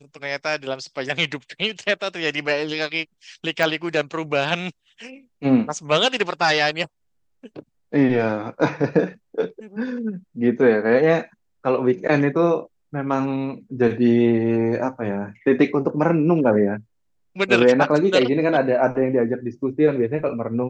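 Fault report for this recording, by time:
0:03.63: click

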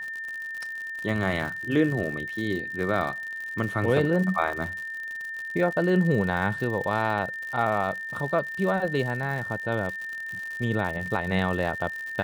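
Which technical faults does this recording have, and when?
surface crackle 100 per second −32 dBFS
whistle 1,800 Hz −32 dBFS

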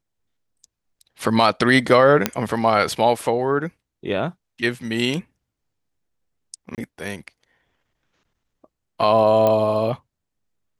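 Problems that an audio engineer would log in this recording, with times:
0:02.26: click −2 dBFS
0:06.75–0:06.78: drop-out 28 ms
0:09.47: click −8 dBFS

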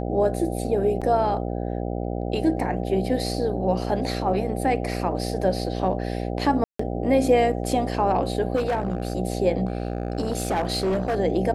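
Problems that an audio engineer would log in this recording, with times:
mains buzz 60 Hz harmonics 13 −28 dBFS
0:01.01–0:01.02: drop-out 6.5 ms
0:06.64–0:06.79: drop-out 154 ms
0:08.55–0:09.13: clipping −19.5 dBFS
0:09.67–0:11.20: clipping −19.5 dBFS

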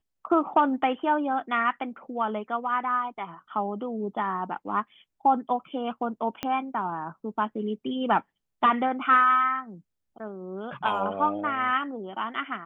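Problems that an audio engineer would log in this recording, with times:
0:06.43: click −14 dBFS

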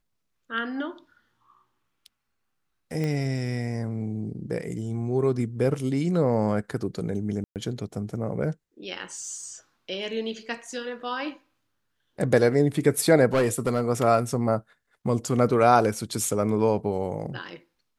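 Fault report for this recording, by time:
0:03.04: click −18 dBFS
0:07.44–0:07.56: drop-out 118 ms
0:13.34–0:13.82: clipping −17.5 dBFS

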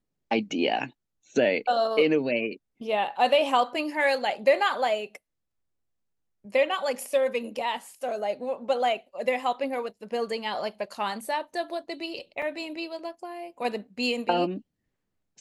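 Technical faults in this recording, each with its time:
0:12.42: drop-out 3.7 ms

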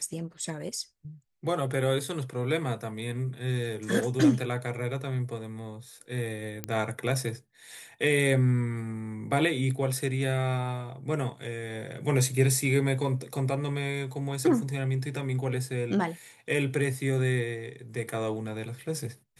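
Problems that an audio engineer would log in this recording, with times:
0:06.64: click −15 dBFS

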